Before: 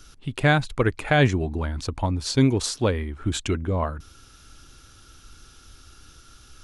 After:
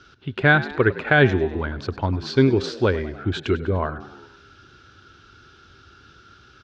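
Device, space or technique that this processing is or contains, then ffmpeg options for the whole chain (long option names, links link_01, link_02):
frequency-shifting delay pedal into a guitar cabinet: -filter_complex "[0:a]asplit=6[link_01][link_02][link_03][link_04][link_05][link_06];[link_02]adelay=100,afreqshift=65,volume=-16.5dB[link_07];[link_03]adelay=200,afreqshift=130,volume=-21.4dB[link_08];[link_04]adelay=300,afreqshift=195,volume=-26.3dB[link_09];[link_05]adelay=400,afreqshift=260,volume=-31.1dB[link_10];[link_06]adelay=500,afreqshift=325,volume=-36dB[link_11];[link_01][link_07][link_08][link_09][link_10][link_11]amix=inputs=6:normalize=0,highpass=83,equalizer=frequency=96:width_type=q:width=4:gain=4,equalizer=frequency=390:width_type=q:width=4:gain=8,equalizer=frequency=1500:width_type=q:width=4:gain=9,lowpass=frequency=4500:width=0.5412,lowpass=frequency=4500:width=1.3066"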